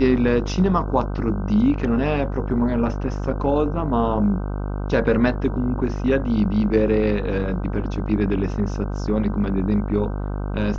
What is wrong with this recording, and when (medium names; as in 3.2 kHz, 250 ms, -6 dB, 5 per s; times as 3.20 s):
buzz 50 Hz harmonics 31 -26 dBFS